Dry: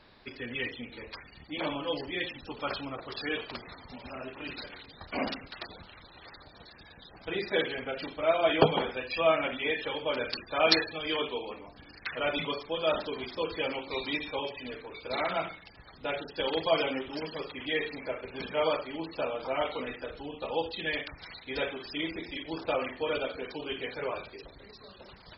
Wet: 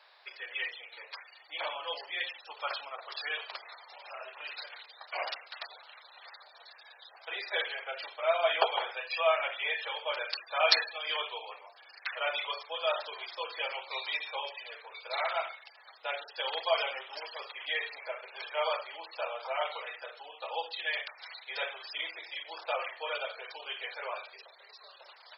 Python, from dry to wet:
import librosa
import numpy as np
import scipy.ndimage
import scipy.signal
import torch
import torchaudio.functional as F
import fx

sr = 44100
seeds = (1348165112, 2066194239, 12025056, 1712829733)

y = scipy.signal.sosfilt(scipy.signal.cheby2(4, 50, 240.0, 'highpass', fs=sr, output='sos'), x)